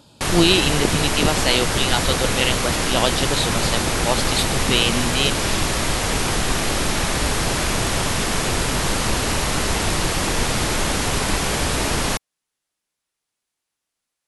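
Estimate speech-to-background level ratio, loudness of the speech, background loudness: −0.5 dB, −21.5 LKFS, −21.0 LKFS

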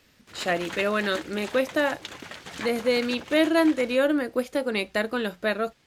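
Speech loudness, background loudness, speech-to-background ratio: −25.5 LKFS, −39.0 LKFS, 13.5 dB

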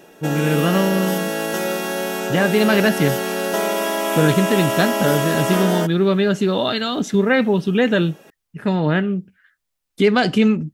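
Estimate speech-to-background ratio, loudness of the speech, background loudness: 3.0 dB, −19.0 LKFS, −22.0 LKFS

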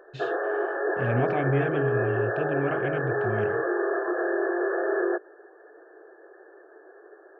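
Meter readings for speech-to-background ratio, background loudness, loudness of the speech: −3.5 dB, −27.0 LKFS, −30.5 LKFS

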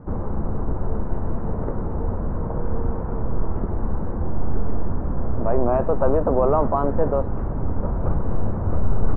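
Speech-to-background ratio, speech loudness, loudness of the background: 5.5 dB, −22.5 LKFS, −28.0 LKFS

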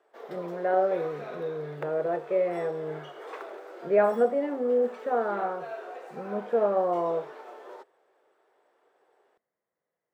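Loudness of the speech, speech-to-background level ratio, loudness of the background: −28.0 LKFS, 14.5 dB, −42.5 LKFS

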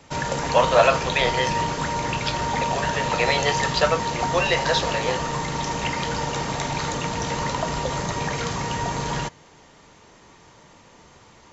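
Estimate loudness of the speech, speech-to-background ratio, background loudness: −23.5 LKFS, 2.0 dB, −25.5 LKFS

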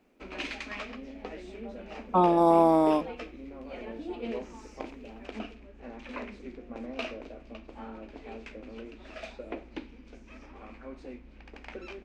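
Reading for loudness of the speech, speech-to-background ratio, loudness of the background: −23.0 LKFS, 18.5 dB, −41.5 LKFS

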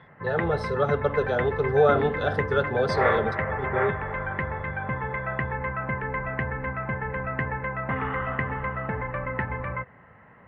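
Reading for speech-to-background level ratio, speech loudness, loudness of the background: 3.5 dB, −26.0 LKFS, −29.5 LKFS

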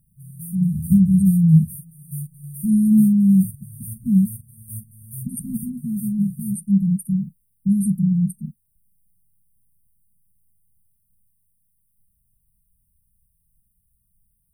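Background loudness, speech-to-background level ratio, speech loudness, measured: −36.5 LKFS, 17.5 dB, −19.0 LKFS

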